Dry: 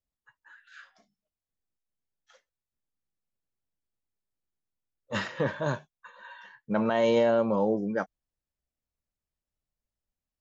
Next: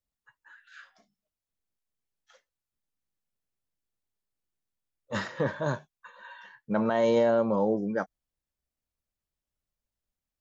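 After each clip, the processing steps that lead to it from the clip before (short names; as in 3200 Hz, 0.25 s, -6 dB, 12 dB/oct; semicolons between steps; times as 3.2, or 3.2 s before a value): dynamic EQ 2700 Hz, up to -7 dB, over -52 dBFS, Q 2.5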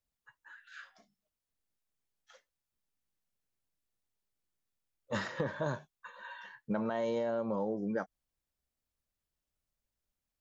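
compressor 12:1, threshold -30 dBFS, peak gain reduction 11 dB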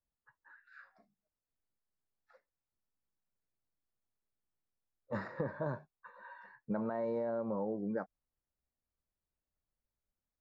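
running mean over 14 samples; gain -2 dB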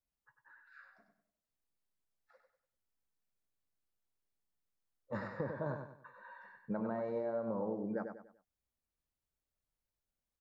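feedback echo 97 ms, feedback 36%, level -6.5 dB; gain -2 dB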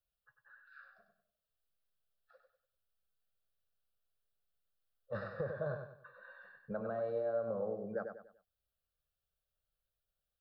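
fixed phaser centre 1400 Hz, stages 8; gain +2.5 dB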